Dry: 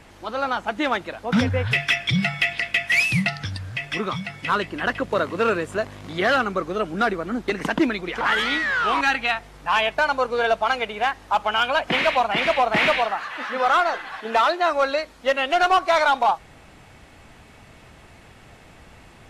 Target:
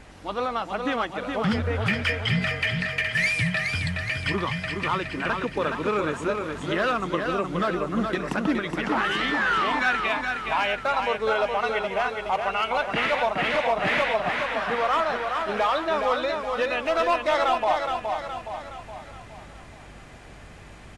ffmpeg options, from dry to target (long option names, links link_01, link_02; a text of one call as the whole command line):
ffmpeg -i in.wav -af "alimiter=limit=-17dB:level=0:latency=1:release=227,aecho=1:1:385|770|1155|1540|1925|2310:0.562|0.281|0.141|0.0703|0.0351|0.0176,asetrate=40572,aresample=44100,aeval=exprs='val(0)+0.00316*(sin(2*PI*50*n/s)+sin(2*PI*2*50*n/s)/2+sin(2*PI*3*50*n/s)/3+sin(2*PI*4*50*n/s)/4+sin(2*PI*5*50*n/s)/5)':channel_layout=same" out.wav